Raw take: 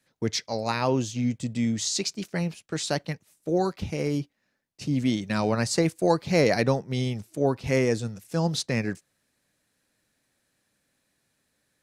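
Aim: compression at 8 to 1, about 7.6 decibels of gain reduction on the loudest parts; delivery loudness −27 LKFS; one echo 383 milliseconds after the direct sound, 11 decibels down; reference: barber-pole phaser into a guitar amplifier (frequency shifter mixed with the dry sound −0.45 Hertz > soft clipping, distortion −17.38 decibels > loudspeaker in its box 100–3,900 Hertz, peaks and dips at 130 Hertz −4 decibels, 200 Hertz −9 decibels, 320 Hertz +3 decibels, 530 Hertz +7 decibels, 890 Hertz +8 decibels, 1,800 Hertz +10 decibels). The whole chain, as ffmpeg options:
ffmpeg -i in.wav -filter_complex "[0:a]acompressor=threshold=-24dB:ratio=8,aecho=1:1:383:0.282,asplit=2[link_01][link_02];[link_02]afreqshift=-0.45[link_03];[link_01][link_03]amix=inputs=2:normalize=1,asoftclip=threshold=-25dB,highpass=100,equalizer=frequency=130:width_type=q:width=4:gain=-4,equalizer=frequency=200:width_type=q:width=4:gain=-9,equalizer=frequency=320:width_type=q:width=4:gain=3,equalizer=frequency=530:width_type=q:width=4:gain=7,equalizer=frequency=890:width_type=q:width=4:gain=8,equalizer=frequency=1800:width_type=q:width=4:gain=10,lowpass=frequency=3900:width=0.5412,lowpass=frequency=3900:width=1.3066,volume=7dB" out.wav

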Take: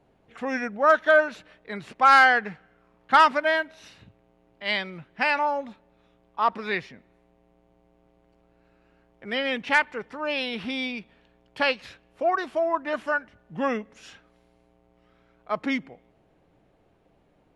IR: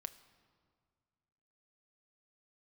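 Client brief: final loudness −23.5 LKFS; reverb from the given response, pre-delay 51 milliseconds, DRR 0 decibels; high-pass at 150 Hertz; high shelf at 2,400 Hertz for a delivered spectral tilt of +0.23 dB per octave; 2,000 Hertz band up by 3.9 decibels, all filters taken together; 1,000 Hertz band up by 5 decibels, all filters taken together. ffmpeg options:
-filter_complex "[0:a]highpass=150,equalizer=frequency=1000:width_type=o:gain=6,equalizer=frequency=2000:width_type=o:gain=4.5,highshelf=frequency=2400:gain=-4,asplit=2[link_01][link_02];[1:a]atrim=start_sample=2205,adelay=51[link_03];[link_02][link_03]afir=irnorm=-1:irlink=0,volume=4dB[link_04];[link_01][link_04]amix=inputs=2:normalize=0,volume=-6.5dB"

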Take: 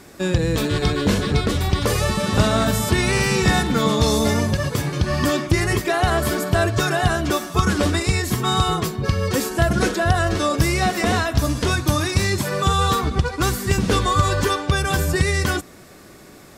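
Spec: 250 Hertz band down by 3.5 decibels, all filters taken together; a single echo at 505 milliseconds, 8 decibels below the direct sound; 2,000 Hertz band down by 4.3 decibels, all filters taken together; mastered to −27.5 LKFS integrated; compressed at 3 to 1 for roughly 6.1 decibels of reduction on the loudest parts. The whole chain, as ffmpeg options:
ffmpeg -i in.wav -af "equalizer=frequency=250:width_type=o:gain=-5,equalizer=frequency=2000:width_type=o:gain=-5.5,acompressor=threshold=-22dB:ratio=3,aecho=1:1:505:0.398,volume=-2.5dB" out.wav

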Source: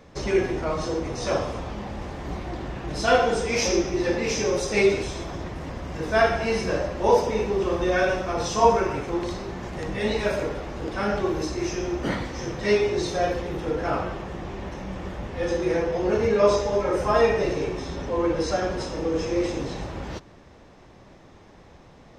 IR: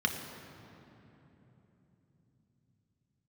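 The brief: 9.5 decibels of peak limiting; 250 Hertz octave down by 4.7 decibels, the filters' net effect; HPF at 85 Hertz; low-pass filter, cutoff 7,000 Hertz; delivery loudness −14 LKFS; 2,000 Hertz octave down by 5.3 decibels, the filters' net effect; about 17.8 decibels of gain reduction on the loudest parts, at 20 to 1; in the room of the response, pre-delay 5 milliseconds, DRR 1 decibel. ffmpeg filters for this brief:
-filter_complex "[0:a]highpass=85,lowpass=7000,equalizer=frequency=250:width_type=o:gain=-7.5,equalizer=frequency=2000:width_type=o:gain=-7,acompressor=threshold=-32dB:ratio=20,alimiter=level_in=8.5dB:limit=-24dB:level=0:latency=1,volume=-8.5dB,asplit=2[link_01][link_02];[1:a]atrim=start_sample=2205,adelay=5[link_03];[link_02][link_03]afir=irnorm=-1:irlink=0,volume=-9dB[link_04];[link_01][link_04]amix=inputs=2:normalize=0,volume=25dB"

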